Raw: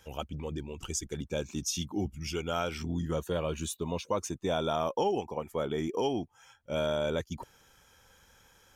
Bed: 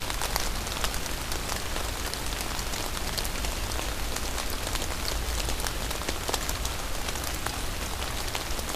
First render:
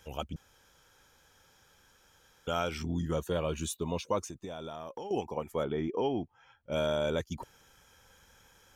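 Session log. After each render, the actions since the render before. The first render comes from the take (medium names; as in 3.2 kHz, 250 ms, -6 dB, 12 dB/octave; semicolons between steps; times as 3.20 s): 0.36–2.47 s: room tone; 4.21–5.11 s: compression, threshold -38 dBFS; 5.64–6.72 s: distance through air 260 m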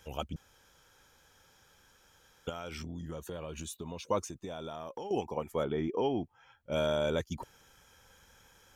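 2.49–4.09 s: compression, threshold -37 dBFS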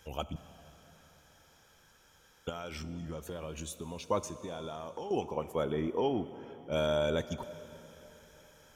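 plate-style reverb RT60 4 s, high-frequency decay 0.85×, DRR 12.5 dB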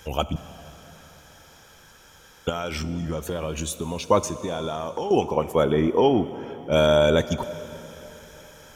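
trim +12 dB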